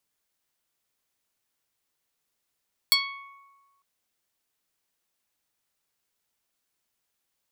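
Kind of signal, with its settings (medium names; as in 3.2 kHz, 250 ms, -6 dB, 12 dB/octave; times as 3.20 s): plucked string C#6, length 0.90 s, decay 1.46 s, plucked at 0.12, medium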